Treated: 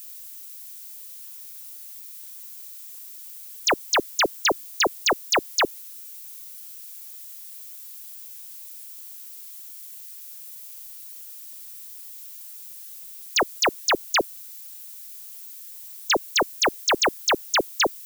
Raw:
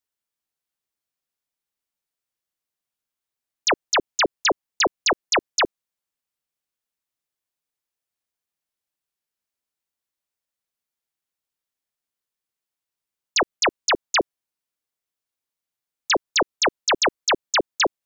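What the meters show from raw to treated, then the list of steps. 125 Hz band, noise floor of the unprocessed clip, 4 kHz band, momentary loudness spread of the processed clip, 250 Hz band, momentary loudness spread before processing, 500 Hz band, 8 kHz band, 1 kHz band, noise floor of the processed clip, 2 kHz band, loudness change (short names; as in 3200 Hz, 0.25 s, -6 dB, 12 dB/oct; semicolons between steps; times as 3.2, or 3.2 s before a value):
-1.0 dB, under -85 dBFS, -1.0 dB, 16 LU, -1.0 dB, 3 LU, -1.0 dB, -0.5 dB, -1.0 dB, -41 dBFS, -1.0 dB, -1.5 dB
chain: harmonic-percussive split percussive -6 dB; added noise violet -46 dBFS; gain +5 dB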